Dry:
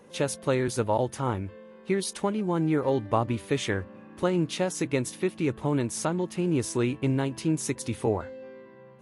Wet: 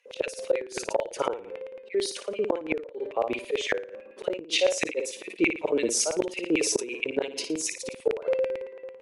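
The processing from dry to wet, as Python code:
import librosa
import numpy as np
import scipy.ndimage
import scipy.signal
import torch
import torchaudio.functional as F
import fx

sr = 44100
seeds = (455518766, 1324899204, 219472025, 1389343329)

p1 = fx.bin_expand(x, sr, power=1.5)
p2 = scipy.signal.sosfilt(scipy.signal.butter(2, 6600.0, 'lowpass', fs=sr, output='sos'), p1)
p3 = fx.peak_eq(p2, sr, hz=530.0, db=12.5, octaves=0.89)
p4 = fx.auto_swell(p3, sr, attack_ms=317.0)
p5 = fx.filter_lfo_highpass(p4, sr, shape='square', hz=9.0, low_hz=440.0, high_hz=2400.0, q=3.8)
p6 = p5 + fx.room_flutter(p5, sr, wall_m=9.8, rt60_s=0.37, dry=0)
p7 = fx.rider(p6, sr, range_db=4, speed_s=2.0)
p8 = fx.gate_flip(p7, sr, shuts_db=-17.0, range_db=-27)
p9 = fx.high_shelf(p8, sr, hz=3900.0, db=7.5)
p10 = fx.sustainer(p9, sr, db_per_s=140.0)
y = F.gain(torch.from_numpy(p10), 5.0).numpy()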